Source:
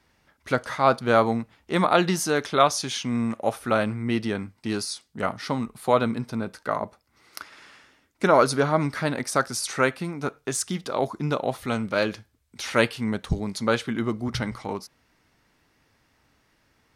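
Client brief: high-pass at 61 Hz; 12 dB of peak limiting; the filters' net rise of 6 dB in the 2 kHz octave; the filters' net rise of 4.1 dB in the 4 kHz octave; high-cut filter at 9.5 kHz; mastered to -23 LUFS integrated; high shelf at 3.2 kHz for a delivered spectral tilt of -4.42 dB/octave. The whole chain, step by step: high-pass 61 Hz; low-pass 9.5 kHz; peaking EQ 2 kHz +8.5 dB; treble shelf 3.2 kHz -5.5 dB; peaking EQ 4 kHz +6.5 dB; trim +3.5 dB; peak limiter -7.5 dBFS

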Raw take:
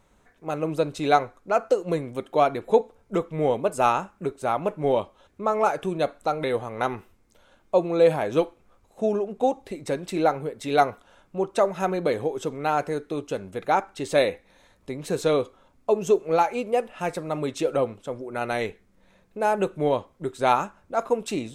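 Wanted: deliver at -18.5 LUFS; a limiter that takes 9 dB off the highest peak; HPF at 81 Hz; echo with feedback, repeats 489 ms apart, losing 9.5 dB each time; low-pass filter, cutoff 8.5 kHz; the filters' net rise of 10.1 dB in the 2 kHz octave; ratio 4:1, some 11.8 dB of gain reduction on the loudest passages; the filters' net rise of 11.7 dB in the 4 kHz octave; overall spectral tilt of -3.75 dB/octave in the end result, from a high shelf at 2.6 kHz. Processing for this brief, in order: high-pass 81 Hz; low-pass 8.5 kHz; peaking EQ 2 kHz +8.5 dB; treble shelf 2.6 kHz +8.5 dB; peaking EQ 4 kHz +4.5 dB; compression 4:1, threshold -25 dBFS; peak limiter -17.5 dBFS; feedback delay 489 ms, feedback 33%, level -9.5 dB; trim +12.5 dB

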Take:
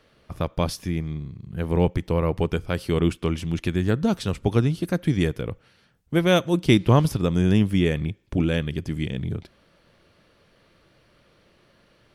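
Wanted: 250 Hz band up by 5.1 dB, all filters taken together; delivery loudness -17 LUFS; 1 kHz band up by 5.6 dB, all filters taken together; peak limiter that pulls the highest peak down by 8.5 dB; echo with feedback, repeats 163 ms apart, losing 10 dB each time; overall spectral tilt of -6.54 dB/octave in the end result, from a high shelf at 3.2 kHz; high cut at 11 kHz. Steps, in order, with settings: low-pass 11 kHz; peaking EQ 250 Hz +7 dB; peaking EQ 1 kHz +6 dB; treble shelf 3.2 kHz +6 dB; peak limiter -9 dBFS; feedback delay 163 ms, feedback 32%, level -10 dB; trim +5 dB

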